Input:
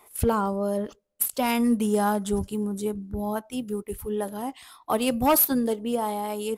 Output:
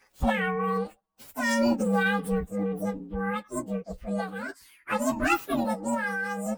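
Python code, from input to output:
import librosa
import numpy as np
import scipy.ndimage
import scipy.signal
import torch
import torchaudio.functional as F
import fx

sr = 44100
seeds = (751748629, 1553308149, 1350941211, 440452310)

y = fx.partial_stretch(x, sr, pct=129)
y = fx.formant_shift(y, sr, semitones=5)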